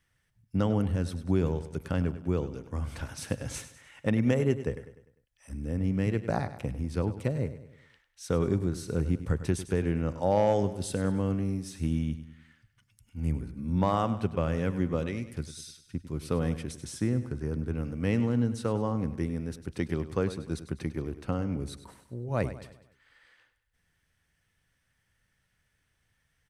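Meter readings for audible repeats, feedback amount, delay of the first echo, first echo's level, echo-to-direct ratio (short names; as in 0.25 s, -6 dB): 4, 46%, 0.1 s, -13.0 dB, -12.0 dB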